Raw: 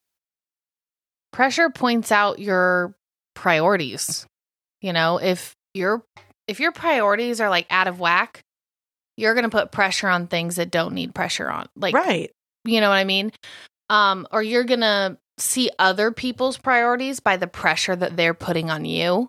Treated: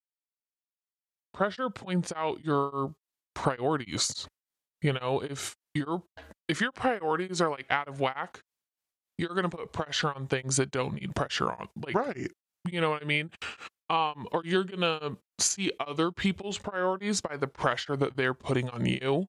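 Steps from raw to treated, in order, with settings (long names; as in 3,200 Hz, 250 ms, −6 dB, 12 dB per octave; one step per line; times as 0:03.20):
fade in at the beginning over 3.97 s
downward compressor 16 to 1, threshold −26 dBFS, peak gain reduction 15.5 dB
pitch shifter −4.5 semitones
tremolo along a rectified sine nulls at 3.5 Hz
level +4.5 dB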